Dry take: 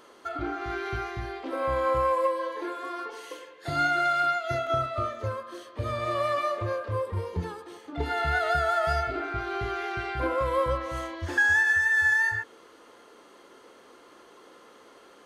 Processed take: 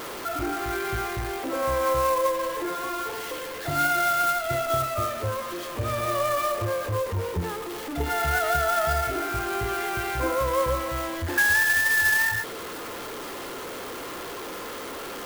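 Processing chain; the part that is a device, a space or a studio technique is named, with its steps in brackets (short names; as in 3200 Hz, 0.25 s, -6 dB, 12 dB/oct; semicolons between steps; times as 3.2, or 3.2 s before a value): early CD player with a faulty converter (zero-crossing step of -30.5 dBFS; clock jitter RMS 0.032 ms)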